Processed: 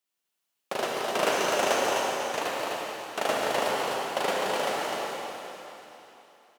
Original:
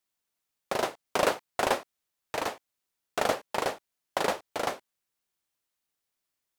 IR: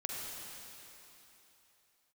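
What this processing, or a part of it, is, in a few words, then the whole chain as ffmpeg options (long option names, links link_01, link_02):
stadium PA: -filter_complex "[0:a]highpass=150,equalizer=frequency=2900:width_type=o:width=0.24:gain=5,aecho=1:1:151.6|253.6:0.282|0.631[link_01];[1:a]atrim=start_sample=2205[link_02];[link_01][link_02]afir=irnorm=-1:irlink=0,asettb=1/sr,asplit=3[link_03][link_04][link_05];[link_03]atrim=end=1.324[link_06];[link_04]atrim=start=1.32:end=2.42,asetpts=PTS-STARTPTS,afade=type=in:duration=0.004:curve=qsin,afade=type=out:start_time=1.096:duration=0.004:curve=qsin,equalizer=frequency=6200:width_type=o:width=0.29:gain=6.5[link_07];[link_05]atrim=start=2.416[link_08];[link_06][link_07]acrossfade=duration=0.004:curve1=hsin:curve2=qsin[link_09];[link_09][link_08]acrossfade=duration=0.004:curve1=qsin:curve2=hsin"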